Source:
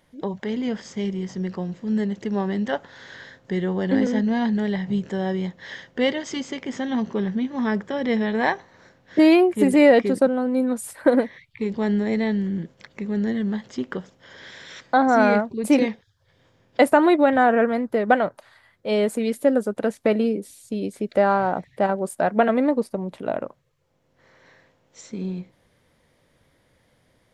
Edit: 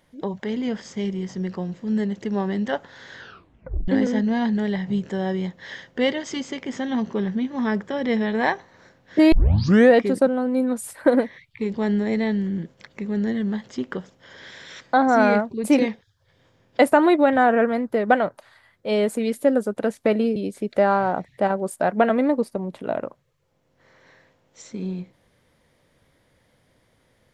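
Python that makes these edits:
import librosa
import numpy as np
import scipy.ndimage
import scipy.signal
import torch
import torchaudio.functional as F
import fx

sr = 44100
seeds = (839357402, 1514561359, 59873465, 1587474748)

y = fx.edit(x, sr, fx.tape_stop(start_s=3.18, length_s=0.7),
    fx.tape_start(start_s=9.32, length_s=0.62),
    fx.cut(start_s=20.36, length_s=0.39), tone=tone)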